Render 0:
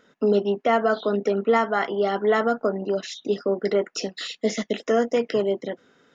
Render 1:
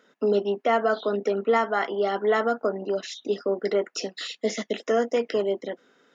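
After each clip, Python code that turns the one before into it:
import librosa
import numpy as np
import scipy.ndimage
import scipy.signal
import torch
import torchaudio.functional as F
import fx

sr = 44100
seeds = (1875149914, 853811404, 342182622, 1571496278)

y = scipy.signal.sosfilt(scipy.signal.butter(2, 230.0, 'highpass', fs=sr, output='sos'), x)
y = y * 10.0 ** (-1.5 / 20.0)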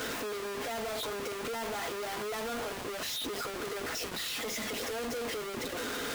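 y = np.sign(x) * np.sqrt(np.mean(np.square(x)))
y = fx.notch_comb(y, sr, f0_hz=190.0)
y = y * 10.0 ** (-9.0 / 20.0)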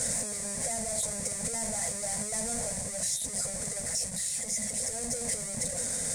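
y = fx.curve_eq(x, sr, hz=(120.0, 190.0, 360.0, 550.0, 1300.0, 2000.0, 2900.0, 8900.0, 14000.0), db=(0, 3, -29, -3, -23, -8, -22, 15, -19))
y = fx.rider(y, sr, range_db=10, speed_s=0.5)
y = y * 10.0 ** (6.5 / 20.0)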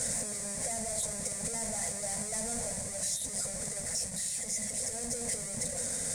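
y = fx.echo_alternate(x, sr, ms=116, hz=1900.0, feedback_pct=69, wet_db=-12)
y = y * 10.0 ** (-2.5 / 20.0)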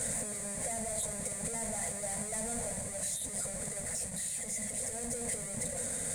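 y = fx.peak_eq(x, sr, hz=5500.0, db=-12.5, octaves=0.47)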